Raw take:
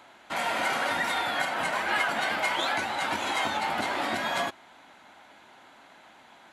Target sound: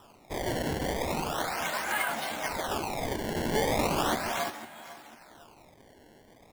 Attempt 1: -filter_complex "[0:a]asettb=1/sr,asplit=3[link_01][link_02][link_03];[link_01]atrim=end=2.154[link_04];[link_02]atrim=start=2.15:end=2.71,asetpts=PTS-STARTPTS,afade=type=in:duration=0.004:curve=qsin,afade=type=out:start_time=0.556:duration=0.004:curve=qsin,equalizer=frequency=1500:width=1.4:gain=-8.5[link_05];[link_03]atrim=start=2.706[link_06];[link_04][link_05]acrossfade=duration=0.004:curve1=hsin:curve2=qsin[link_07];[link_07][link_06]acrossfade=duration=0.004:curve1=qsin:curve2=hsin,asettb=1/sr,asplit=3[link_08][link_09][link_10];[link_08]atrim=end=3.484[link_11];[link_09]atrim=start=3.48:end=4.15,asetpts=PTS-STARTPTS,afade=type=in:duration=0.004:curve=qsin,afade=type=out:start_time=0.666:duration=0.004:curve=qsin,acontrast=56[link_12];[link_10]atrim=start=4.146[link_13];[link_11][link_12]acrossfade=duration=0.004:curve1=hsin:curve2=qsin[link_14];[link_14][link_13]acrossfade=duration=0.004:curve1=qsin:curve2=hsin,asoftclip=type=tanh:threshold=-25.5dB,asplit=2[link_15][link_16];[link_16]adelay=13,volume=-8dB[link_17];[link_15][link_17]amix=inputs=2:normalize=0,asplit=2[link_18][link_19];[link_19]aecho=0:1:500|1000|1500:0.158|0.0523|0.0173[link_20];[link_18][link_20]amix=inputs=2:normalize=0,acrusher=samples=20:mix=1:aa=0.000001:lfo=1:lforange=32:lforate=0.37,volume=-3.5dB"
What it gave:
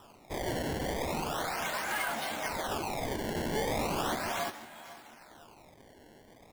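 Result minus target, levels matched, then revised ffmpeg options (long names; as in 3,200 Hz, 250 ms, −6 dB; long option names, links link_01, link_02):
soft clipping: distortion +14 dB
-filter_complex "[0:a]asettb=1/sr,asplit=3[link_01][link_02][link_03];[link_01]atrim=end=2.154[link_04];[link_02]atrim=start=2.15:end=2.71,asetpts=PTS-STARTPTS,afade=type=in:duration=0.004:curve=qsin,afade=type=out:start_time=0.556:duration=0.004:curve=qsin,equalizer=frequency=1500:width=1.4:gain=-8.5[link_05];[link_03]atrim=start=2.706[link_06];[link_04][link_05]acrossfade=duration=0.004:curve1=hsin:curve2=qsin[link_07];[link_07][link_06]acrossfade=duration=0.004:curve1=qsin:curve2=hsin,asettb=1/sr,asplit=3[link_08][link_09][link_10];[link_08]atrim=end=3.484[link_11];[link_09]atrim=start=3.48:end=4.15,asetpts=PTS-STARTPTS,afade=type=in:duration=0.004:curve=qsin,afade=type=out:start_time=0.666:duration=0.004:curve=qsin,acontrast=56[link_12];[link_10]atrim=start=4.146[link_13];[link_11][link_12]acrossfade=duration=0.004:curve1=hsin:curve2=qsin[link_14];[link_14][link_13]acrossfade=duration=0.004:curve1=qsin:curve2=hsin,asoftclip=type=tanh:threshold=-14dB,asplit=2[link_15][link_16];[link_16]adelay=13,volume=-8dB[link_17];[link_15][link_17]amix=inputs=2:normalize=0,asplit=2[link_18][link_19];[link_19]aecho=0:1:500|1000|1500:0.158|0.0523|0.0173[link_20];[link_18][link_20]amix=inputs=2:normalize=0,acrusher=samples=20:mix=1:aa=0.000001:lfo=1:lforange=32:lforate=0.37,volume=-3.5dB"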